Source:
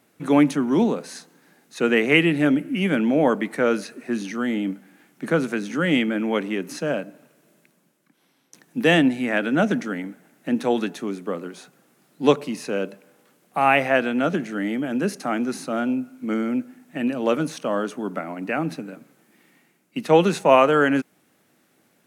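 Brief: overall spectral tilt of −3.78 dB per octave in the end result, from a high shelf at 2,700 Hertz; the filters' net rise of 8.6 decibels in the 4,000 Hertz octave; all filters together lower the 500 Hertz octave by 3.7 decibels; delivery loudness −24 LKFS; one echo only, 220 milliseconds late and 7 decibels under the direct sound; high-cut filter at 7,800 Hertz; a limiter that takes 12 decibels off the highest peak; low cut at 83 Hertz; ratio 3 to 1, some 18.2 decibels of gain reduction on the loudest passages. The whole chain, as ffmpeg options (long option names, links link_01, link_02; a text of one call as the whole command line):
ffmpeg -i in.wav -af "highpass=83,lowpass=7800,equalizer=frequency=500:width_type=o:gain=-5,highshelf=frequency=2700:gain=7,equalizer=frequency=4000:width_type=o:gain=7,acompressor=threshold=-34dB:ratio=3,alimiter=level_in=3dB:limit=-24dB:level=0:latency=1,volume=-3dB,aecho=1:1:220:0.447,volume=12.5dB" out.wav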